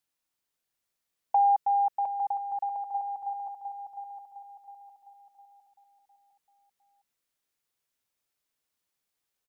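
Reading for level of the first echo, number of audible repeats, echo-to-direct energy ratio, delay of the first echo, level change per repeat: −6.5 dB, 4, −5.5 dB, 707 ms, −7.5 dB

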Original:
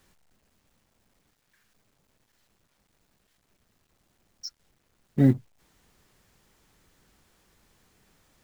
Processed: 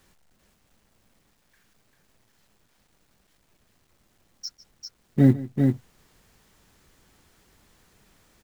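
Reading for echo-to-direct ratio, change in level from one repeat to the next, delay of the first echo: −4.5 dB, repeats not evenly spaced, 149 ms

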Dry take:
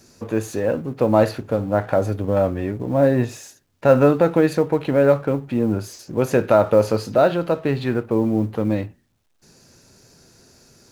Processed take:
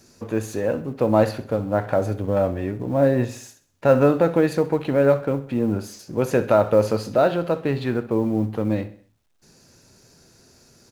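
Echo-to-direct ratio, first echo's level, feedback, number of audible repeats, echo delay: −15.0 dB, −16.0 dB, 47%, 3, 65 ms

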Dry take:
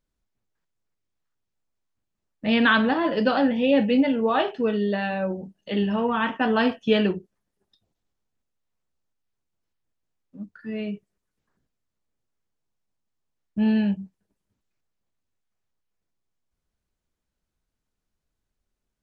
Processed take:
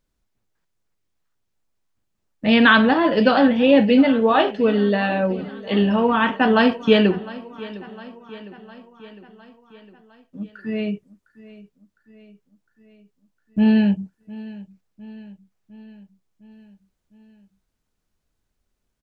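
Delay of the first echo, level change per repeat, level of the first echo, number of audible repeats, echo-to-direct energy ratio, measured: 707 ms, −4.5 dB, −19.0 dB, 4, −17.0 dB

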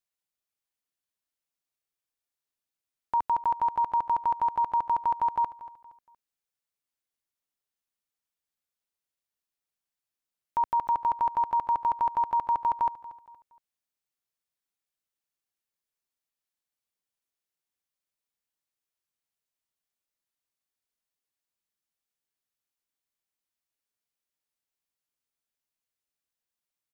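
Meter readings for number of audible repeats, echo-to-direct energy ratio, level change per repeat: 3, −17.0 dB, −8.5 dB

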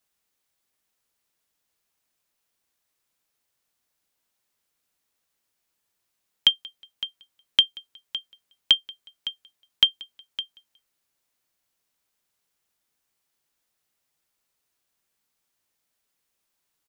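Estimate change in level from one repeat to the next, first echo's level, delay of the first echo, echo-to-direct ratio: −9.5 dB, −23.5 dB, 182 ms, −23.0 dB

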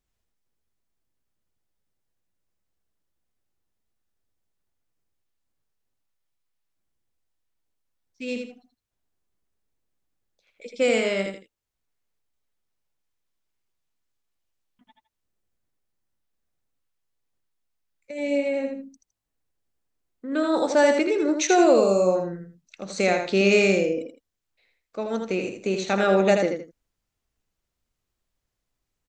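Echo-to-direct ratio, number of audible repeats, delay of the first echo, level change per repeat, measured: −5.0 dB, 2, 81 ms, −12.0 dB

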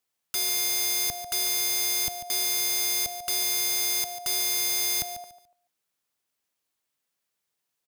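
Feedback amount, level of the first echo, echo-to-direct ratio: 24%, −12.0 dB, −11.5 dB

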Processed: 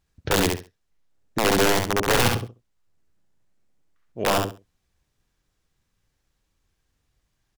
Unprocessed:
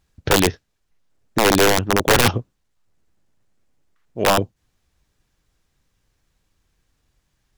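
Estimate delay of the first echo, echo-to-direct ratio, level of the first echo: 67 ms, −4.0 dB, −4.0 dB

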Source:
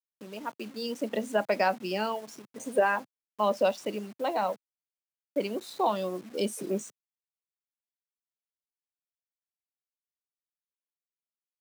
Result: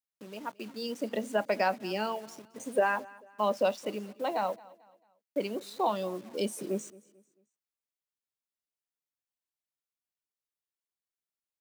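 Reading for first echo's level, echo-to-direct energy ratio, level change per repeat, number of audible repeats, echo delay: −22.0 dB, −21.5 dB, −8.5 dB, 2, 221 ms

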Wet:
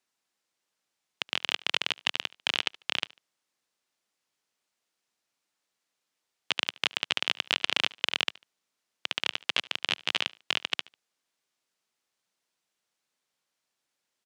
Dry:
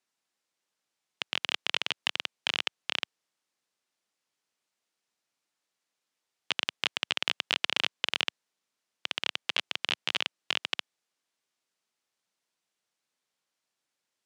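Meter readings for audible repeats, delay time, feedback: 2, 73 ms, 32%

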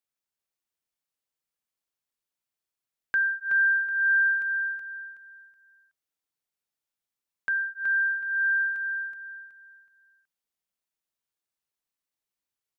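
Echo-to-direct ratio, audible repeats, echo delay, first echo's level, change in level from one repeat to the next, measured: −5.0 dB, 3, 373 ms, −5.5 dB, −10.5 dB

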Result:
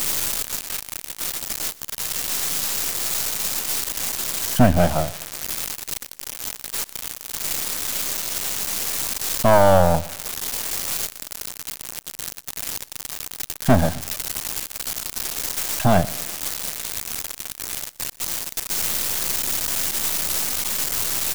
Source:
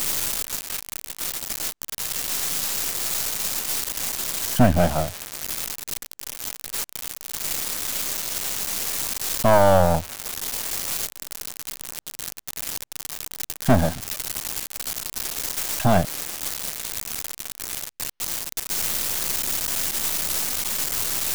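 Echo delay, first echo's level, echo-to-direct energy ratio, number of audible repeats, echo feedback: 122 ms, −21.0 dB, −20.5 dB, 2, 38%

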